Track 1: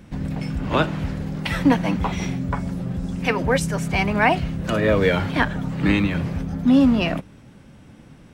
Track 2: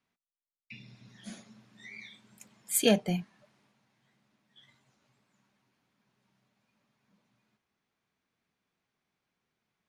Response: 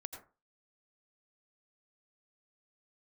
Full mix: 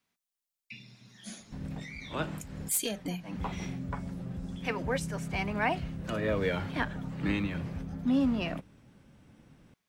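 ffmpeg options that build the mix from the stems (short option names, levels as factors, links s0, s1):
-filter_complex "[0:a]adelay=1400,volume=0.266[s0];[1:a]acompressor=threshold=0.0316:ratio=12,highshelf=f=3500:g=8.5,volume=15,asoftclip=hard,volume=0.0668,volume=0.891,asplit=2[s1][s2];[s2]apad=whole_len=429475[s3];[s0][s3]sidechaincompress=threshold=0.00224:ratio=8:attack=16:release=163[s4];[s4][s1]amix=inputs=2:normalize=0"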